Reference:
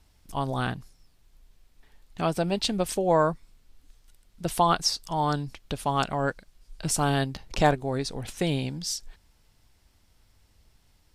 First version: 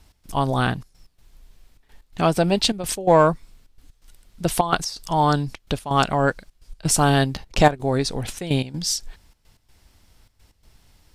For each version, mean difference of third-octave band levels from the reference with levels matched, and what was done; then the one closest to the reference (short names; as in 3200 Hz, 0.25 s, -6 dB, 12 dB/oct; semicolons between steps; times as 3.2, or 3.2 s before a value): 2.5 dB: step gate "x.xxxxx." 127 bpm -12 dB; in parallel at -10 dB: hard clip -18 dBFS, distortion -14 dB; on the sum: gain +5 dB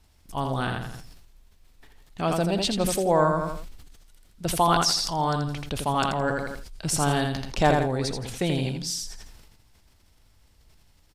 5.5 dB: on a send: feedback echo 83 ms, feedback 29%, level -6 dB; on the sum: sustainer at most 42 dB/s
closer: first